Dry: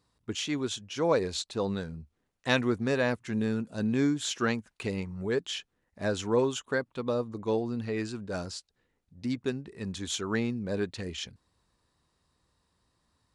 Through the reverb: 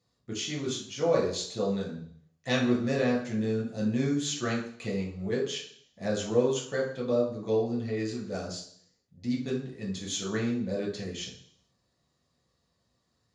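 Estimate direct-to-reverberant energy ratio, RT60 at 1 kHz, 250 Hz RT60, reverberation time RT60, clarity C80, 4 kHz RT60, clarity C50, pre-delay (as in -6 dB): -4.5 dB, 0.60 s, 0.65 s, 0.60 s, 10.0 dB, 0.70 s, 6.5 dB, 3 ms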